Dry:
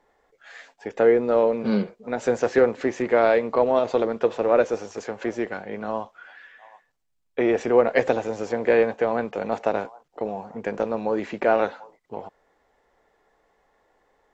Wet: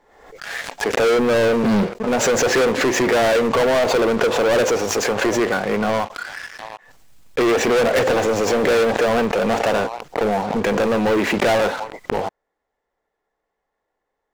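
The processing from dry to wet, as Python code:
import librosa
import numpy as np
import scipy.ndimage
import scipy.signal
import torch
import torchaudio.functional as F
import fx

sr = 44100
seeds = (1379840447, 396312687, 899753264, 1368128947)

p1 = 10.0 ** (-15.0 / 20.0) * (np.abs((x / 10.0 ** (-15.0 / 20.0) + 3.0) % 4.0 - 2.0) - 1.0)
p2 = x + (p1 * librosa.db_to_amplitude(-4.0))
p3 = fx.leveller(p2, sr, passes=5)
p4 = fx.pre_swell(p3, sr, db_per_s=62.0)
y = p4 * librosa.db_to_amplitude(-7.0)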